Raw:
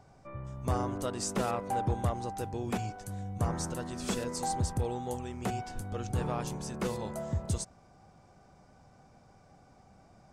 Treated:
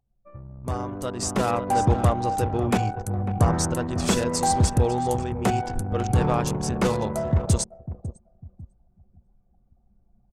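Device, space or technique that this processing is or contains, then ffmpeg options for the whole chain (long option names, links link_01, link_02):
voice memo with heavy noise removal: -af "aecho=1:1:548|1096|1644|2192:0.237|0.104|0.0459|0.0202,anlmdn=0.251,dynaudnorm=framelen=910:gausssize=3:maxgain=11dB"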